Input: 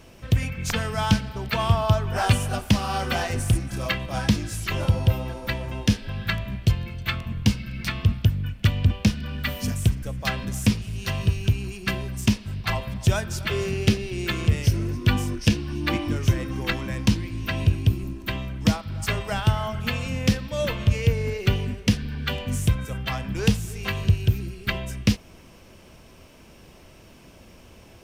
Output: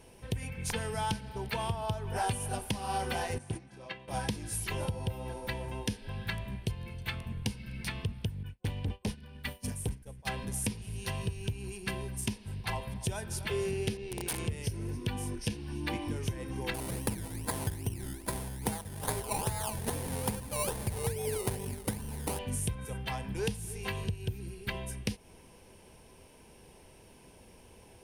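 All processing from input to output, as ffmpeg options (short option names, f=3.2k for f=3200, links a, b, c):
-filter_complex "[0:a]asettb=1/sr,asplit=3[a][b][c];[a]atrim=end=3.384[d];[b]atrim=start=3.38:end=4.08,asetpts=PTS-STARTPTS,afade=t=in:d=0.004:c=qsin,afade=t=out:st=0.696:d=0.004:c=qsin,agate=range=-10dB:threshold=-22dB:ratio=16:release=100:detection=peak,highpass=140,lowpass=4.7k,asplit=2[e][f];[f]adelay=13,volume=-12.5dB[g];[e][g]amix=inputs=2:normalize=0,atrim=end_sample=30870[h];[c]atrim=start=4.076[i];[d][h]acrossfade=d=0.004:c1=hsin:c2=qsin[j];[j][i]acrossfade=d=0.004:c1=qsin:c2=hsin,asettb=1/sr,asplit=3[k][l][m];[k]atrim=end=8.434[n];[l]atrim=start=8.43:end=10.29,asetpts=PTS-STARTPTS,afade=t=in:d=0.004:c=qsin,afade=t=out:st=1.856:d=0.004:c=qsin,agate=range=-33dB:threshold=-24dB:ratio=3:release=100:detection=peak,asoftclip=type=hard:threshold=-17.5dB[o];[m]atrim=start=10.286[p];[n][o]acrossfade=d=0.004:c1=hsin:c2=qsin[q];[q][p]acrossfade=d=0.004:c1=qsin:c2=hsin,asettb=1/sr,asplit=3[r][s][t];[r]atrim=end=13.974[u];[s]atrim=start=13.97:end=14.39,asetpts=PTS-STARTPTS,afade=t=in:d=0.004:c=qsin,afade=t=out:st=0.416:d=0.004:c=qsin,lowpass=5.1k,aeval=exprs='(mod(11.2*val(0)+1,2)-1)/11.2':c=same,tremolo=f=82:d=0.4[v];[t]atrim=start=14.386[w];[u][v]acrossfade=d=0.004:c1=hsin:c2=qsin[x];[x][w]acrossfade=d=0.004:c1=qsin:c2=hsin,asettb=1/sr,asplit=3[y][z][aa];[y]atrim=end=16.744[ab];[z]atrim=start=16.74:end=22.39,asetpts=PTS-STARTPTS,afade=t=in:d=0.004:c=qsin,afade=t=out:st=5.646:d=0.004:c=qsin,bandreject=f=50:t=h:w=6,bandreject=f=100:t=h:w=6,bandreject=f=150:t=h:w=6,bandreject=f=200:t=h:w=6,bandreject=f=250:t=h:w=6,bandreject=f=300:t=h:w=6,bandreject=f=350:t=h:w=6,acrusher=samples=21:mix=1:aa=0.000001:lfo=1:lforange=12.6:lforate=2.4,highshelf=f=5.6k:g=7.5[ac];[aa]atrim=start=22.386[ad];[ab][ac]acrossfade=d=0.004:c1=hsin:c2=qsin[ae];[ae][ad]acrossfade=d=0.004:c1=qsin:c2=hsin,acompressor=threshold=-22dB:ratio=6,superequalizer=7b=1.78:9b=1.78:10b=0.631:16b=3.55,volume=-8dB"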